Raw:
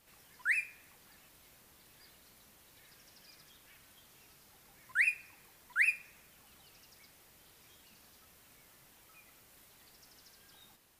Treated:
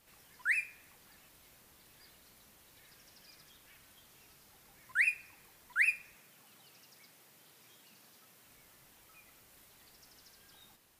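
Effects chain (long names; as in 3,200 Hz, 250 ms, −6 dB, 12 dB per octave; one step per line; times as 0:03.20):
0:06.15–0:08.45: high-pass filter 110 Hz 24 dB per octave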